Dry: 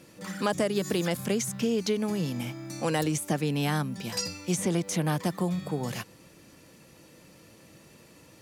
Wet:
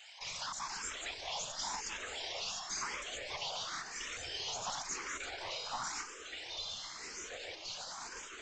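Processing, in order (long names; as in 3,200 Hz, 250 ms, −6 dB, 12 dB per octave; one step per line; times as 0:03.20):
high-pass filter 740 Hz 12 dB per octave
high-shelf EQ 3,900 Hz +11.5 dB
brickwall limiter −29 dBFS, peak gain reduction 17.5 dB
frequency shifter +440 Hz
random phases in short frames
asymmetric clip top −44.5 dBFS, bottom −31.5 dBFS
delay with pitch and tempo change per echo 324 ms, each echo −7 semitones, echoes 2, each echo −6 dB
downsampling to 16,000 Hz
frequency shifter mixed with the dry sound +0.95 Hz
level +5 dB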